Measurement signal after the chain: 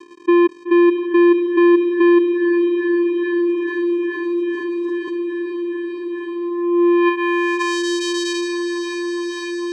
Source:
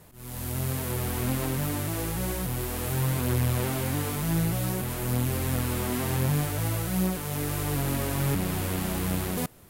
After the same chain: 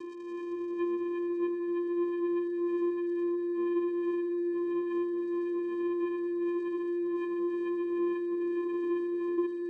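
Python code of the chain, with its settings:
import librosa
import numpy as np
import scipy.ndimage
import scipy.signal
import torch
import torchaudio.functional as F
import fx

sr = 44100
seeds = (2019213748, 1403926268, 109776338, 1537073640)

y = fx.spec_expand(x, sr, power=2.2)
y = scipy.signal.sosfilt(scipy.signal.butter(2, 190.0, 'highpass', fs=sr, output='sos'), y)
y = fx.peak_eq(y, sr, hz=360.0, db=11.5, octaves=0.98)
y = fx.dmg_crackle(y, sr, seeds[0], per_s=130.0, level_db=-47.0)
y = fx.rider(y, sr, range_db=4, speed_s=0.5)
y = fx.low_shelf_res(y, sr, hz=480.0, db=-9.5, q=3.0)
y = fx.notch_comb(y, sr, f0_hz=1100.0)
y = fx.small_body(y, sr, hz=(940.0, 2300.0, 3300.0), ring_ms=45, db=9)
y = fx.vocoder(y, sr, bands=4, carrier='square', carrier_hz=347.0)
y = fx.echo_diffused(y, sr, ms=507, feedback_pct=77, wet_db=-12)
y = fx.env_flatten(y, sr, amount_pct=50)
y = F.gain(torch.from_numpy(y), 3.0).numpy()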